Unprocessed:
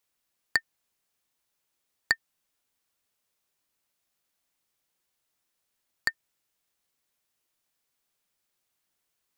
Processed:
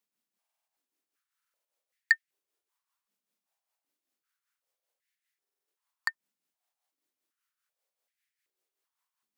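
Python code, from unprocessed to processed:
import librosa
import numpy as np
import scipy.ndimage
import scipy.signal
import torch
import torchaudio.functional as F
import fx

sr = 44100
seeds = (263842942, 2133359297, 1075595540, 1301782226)

y = x * (1.0 - 0.57 / 2.0 + 0.57 / 2.0 * np.cos(2.0 * np.pi * 5.1 * (np.arange(len(x)) / sr)))
y = fx.buffer_glitch(y, sr, at_s=(0.4, 1.37, 5.4), block=2048, repeats=5)
y = fx.filter_held_highpass(y, sr, hz=2.6, low_hz=210.0, high_hz=1900.0)
y = y * librosa.db_to_amplitude(-6.0)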